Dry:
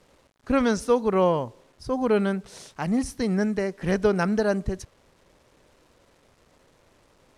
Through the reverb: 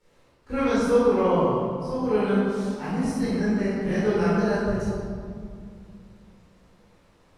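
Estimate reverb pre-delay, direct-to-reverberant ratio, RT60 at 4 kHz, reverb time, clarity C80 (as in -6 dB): 18 ms, -11.5 dB, 1.4 s, 2.2 s, -1.0 dB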